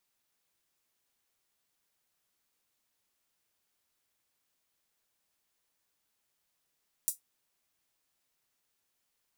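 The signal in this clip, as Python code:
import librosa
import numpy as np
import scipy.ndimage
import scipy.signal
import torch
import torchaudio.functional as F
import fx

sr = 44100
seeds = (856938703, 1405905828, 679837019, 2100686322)

y = fx.drum_hat(sr, length_s=0.24, from_hz=8100.0, decay_s=0.14)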